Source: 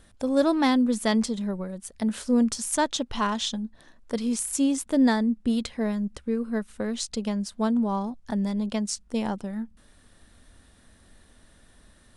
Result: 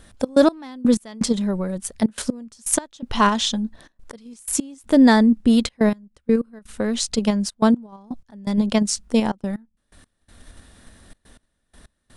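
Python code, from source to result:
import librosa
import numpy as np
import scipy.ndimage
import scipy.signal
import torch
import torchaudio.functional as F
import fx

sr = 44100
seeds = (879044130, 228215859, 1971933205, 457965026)

p1 = fx.level_steps(x, sr, step_db=13)
p2 = x + (p1 * librosa.db_to_amplitude(1.5))
p3 = fx.step_gate(p2, sr, bpm=124, pattern='xx.x...x..xxxxx', floor_db=-24.0, edge_ms=4.5)
y = p3 * librosa.db_to_amplitude(4.0)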